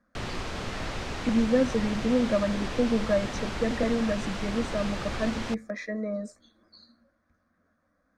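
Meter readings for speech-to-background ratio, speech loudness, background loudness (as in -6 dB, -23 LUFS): 6.5 dB, -28.5 LUFS, -35.0 LUFS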